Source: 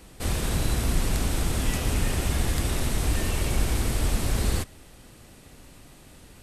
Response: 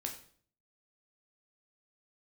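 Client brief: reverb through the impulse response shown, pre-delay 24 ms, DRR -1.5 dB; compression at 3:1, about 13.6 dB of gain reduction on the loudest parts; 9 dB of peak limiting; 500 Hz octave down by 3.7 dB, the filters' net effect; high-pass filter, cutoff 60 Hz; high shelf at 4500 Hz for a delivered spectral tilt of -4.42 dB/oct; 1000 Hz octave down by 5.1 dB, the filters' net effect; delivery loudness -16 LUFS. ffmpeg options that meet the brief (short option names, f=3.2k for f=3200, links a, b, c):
-filter_complex "[0:a]highpass=60,equalizer=f=500:t=o:g=-3.5,equalizer=f=1k:t=o:g=-5.5,highshelf=f=4.5k:g=-4,acompressor=threshold=-43dB:ratio=3,alimiter=level_in=13.5dB:limit=-24dB:level=0:latency=1,volume=-13.5dB,asplit=2[a][b];[1:a]atrim=start_sample=2205,adelay=24[c];[b][c]afir=irnorm=-1:irlink=0,volume=2dB[d];[a][d]amix=inputs=2:normalize=0,volume=28dB"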